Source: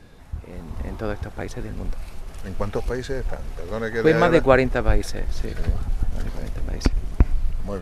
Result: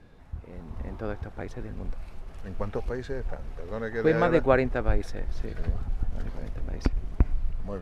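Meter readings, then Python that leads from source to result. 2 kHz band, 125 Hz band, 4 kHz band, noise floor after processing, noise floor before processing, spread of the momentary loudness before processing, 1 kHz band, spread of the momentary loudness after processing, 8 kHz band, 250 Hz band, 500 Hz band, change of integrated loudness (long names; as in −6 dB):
−7.0 dB, −5.5 dB, −11.0 dB, −45 dBFS, −40 dBFS, 19 LU, −6.0 dB, 19 LU, can't be measured, −5.5 dB, −5.5 dB, −6.0 dB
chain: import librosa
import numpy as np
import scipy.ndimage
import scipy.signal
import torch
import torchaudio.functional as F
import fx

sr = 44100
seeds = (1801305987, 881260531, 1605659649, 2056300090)

y = fx.high_shelf(x, sr, hz=4400.0, db=-12.0)
y = F.gain(torch.from_numpy(y), -5.5).numpy()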